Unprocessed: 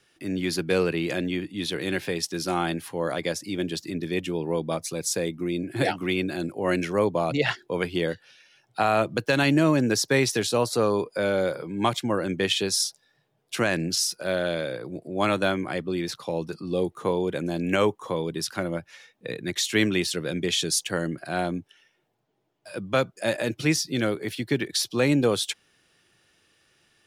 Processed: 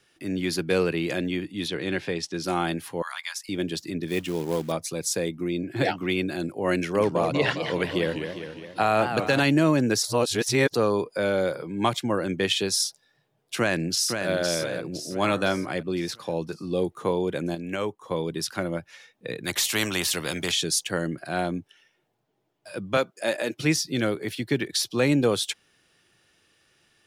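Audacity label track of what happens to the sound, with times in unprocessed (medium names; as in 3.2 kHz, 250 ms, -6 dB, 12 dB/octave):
1.680000	2.440000	distance through air 70 m
3.020000	3.490000	steep high-pass 920 Hz 48 dB/octave
4.080000	4.720000	short-mantissa float mantissa of 2-bit
5.480000	6.100000	peaking EQ 10 kHz -13 dB 0.37 oct
6.750000	9.400000	modulated delay 203 ms, feedback 59%, depth 217 cents, level -7.5 dB
10.030000	10.750000	reverse
13.570000	14.290000	echo throw 510 ms, feedback 45%, level -6 dB
14.910000	15.690000	de-hum 73.37 Hz, notches 25
17.550000	18.110000	gain -7 dB
19.440000	20.520000	spectrum-flattening compressor 2:1
22.970000	23.590000	high-pass 260 Hz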